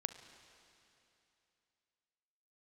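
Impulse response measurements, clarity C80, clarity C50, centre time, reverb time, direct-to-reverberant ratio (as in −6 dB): 11.0 dB, 10.0 dB, 24 ms, 2.9 s, 9.5 dB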